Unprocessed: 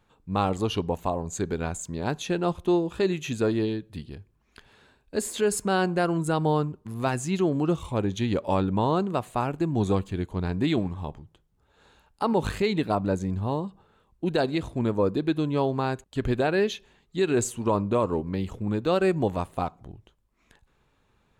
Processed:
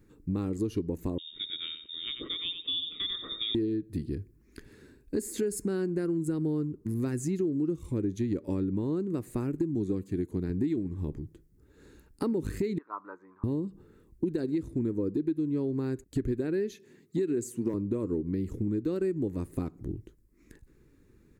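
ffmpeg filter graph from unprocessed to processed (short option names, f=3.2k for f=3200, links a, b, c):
-filter_complex "[0:a]asettb=1/sr,asplit=3[a][b][c];[a]atrim=end=1.184[d];[b]atrim=start=1.18:end=3.55,asetpts=PTS-STARTPTS,afade=t=in:d=0.004:c=qsin,afade=t=out:st=2.366:d=0.004:c=qsin,equalizer=f=1.7k:w=0.84:g=-9,aecho=1:1:91|182|273:0.376|0.0902|0.0216,atrim=end_sample=104517,lowpass=f=3.2k:t=q:w=0.5098,lowpass=f=3.2k:t=q:w=0.6013,lowpass=f=3.2k:t=q:w=0.9,lowpass=f=3.2k:t=q:w=2.563,afreqshift=-3800[e];[c]atrim=start=3.546[f];[d][e]acrossfade=d=0.004:c1=hsin:c2=qsin[g];[g][f]acrossfade=d=0.004:c1=qsin:c2=hsin,asettb=1/sr,asplit=3[h][i][j];[h]atrim=end=9.754[k];[i]atrim=start=9.75:end=10.5,asetpts=PTS-STARTPTS,afade=t=in:d=0.004:c=qsin,afade=t=out:st=0.746:d=0.004:c=qsin,acrossover=split=5100[l][m];[m]acompressor=threshold=-57dB:ratio=4:attack=1:release=60[n];[l][n]amix=inputs=2:normalize=0,highpass=100,highshelf=f=6.2k:g=5.5[o];[j]atrim=start=10.496[p];[k][o]acrossfade=d=0.004:c1=hsin:c2=qsin[q];[q][p]acrossfade=d=0.004:c1=qsin:c2=hsin,asettb=1/sr,asplit=3[r][s][t];[r]atrim=end=12.784[u];[s]atrim=start=12.78:end=13.44,asetpts=PTS-STARTPTS,afade=t=in:d=0.004:c=qsin,afade=t=out:st=0.656:d=0.004:c=qsin,asuperpass=centerf=1100:order=4:qfactor=2.8,acontrast=55[v];[t]atrim=start=13.436[w];[u][v]acrossfade=d=0.004:c1=hsin:c2=qsin[x];[x][w]acrossfade=d=0.004:c1=qsin:c2=hsin,asettb=1/sr,asplit=3[y][z][aa];[y]atrim=end=16.734[ab];[z]atrim=start=16.73:end=17.74,asetpts=PTS-STARTPTS,afade=t=in:d=0.004:c=qsin,afade=t=out:st=1.006:d=0.004:c=qsin,highpass=f=120:w=0.5412,highpass=f=120:w=1.3066,asoftclip=type=hard:threshold=-13.5dB[ac];[aa]atrim=start=17.736[ad];[ab][ac]acrossfade=d=0.004:c1=hsin:c2=qsin[ae];[ae][ad]acrossfade=d=0.004:c1=qsin:c2=hsin,firequalizer=gain_entry='entry(210,0);entry(310,8);entry(700,-20);entry(1900,-6);entry(3100,-18);entry(4700,-7);entry(13000,1)':delay=0.05:min_phase=1,acompressor=threshold=-35dB:ratio=6,volume=7dB"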